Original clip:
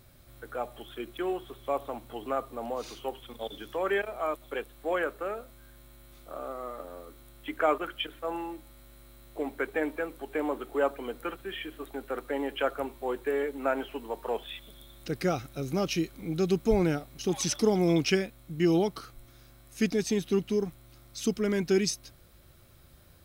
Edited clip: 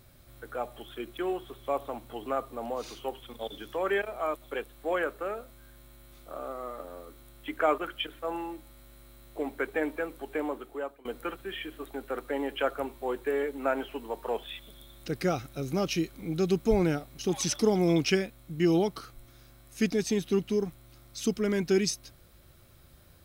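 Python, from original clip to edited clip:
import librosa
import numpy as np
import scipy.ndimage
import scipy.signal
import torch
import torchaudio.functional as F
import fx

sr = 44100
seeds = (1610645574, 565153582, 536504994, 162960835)

y = fx.edit(x, sr, fx.fade_out_to(start_s=10.3, length_s=0.75, floor_db=-21.0), tone=tone)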